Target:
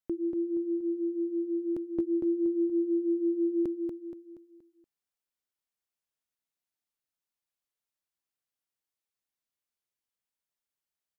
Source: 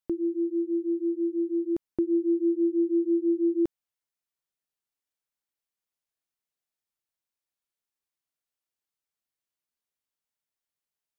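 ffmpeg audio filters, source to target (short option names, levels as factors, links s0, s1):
-af "aecho=1:1:237|474|711|948|1185:0.562|0.231|0.0945|0.0388|0.0159,volume=0.668"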